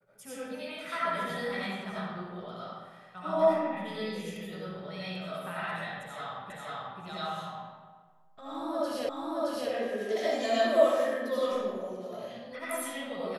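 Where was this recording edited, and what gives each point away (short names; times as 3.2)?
6.5 repeat of the last 0.49 s
9.09 repeat of the last 0.62 s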